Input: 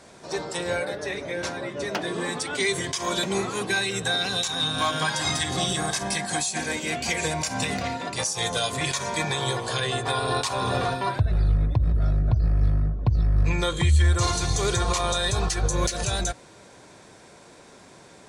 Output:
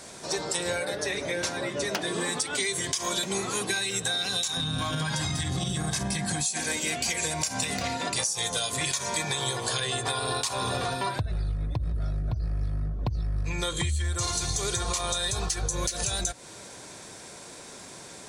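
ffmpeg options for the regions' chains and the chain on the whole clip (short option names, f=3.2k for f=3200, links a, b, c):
-filter_complex "[0:a]asettb=1/sr,asplit=3[a][b][c];[a]atrim=end=4.574[d];[b]atrim=start=4.57:end=6.46,asetpts=PTS-STARTPTS,afade=t=in:d=0.004:c=qsin,afade=t=out:st=1.886:d=0.004:c=qsin,bass=f=250:g=14,treble=f=4k:g=-5,acompressor=threshold=-23dB:ratio=6:attack=3.2:release=140:knee=1:detection=peak[e];[c]atrim=start=6.456[f];[d][e]acrossfade=d=0.004:c1=hsin:c2=qsin[g];[g][f]acrossfade=d=0.004:c1=qsin:c2=hsin,highshelf=f=4.2k:g=11.5,acompressor=threshold=-28dB:ratio=6,volume=2dB"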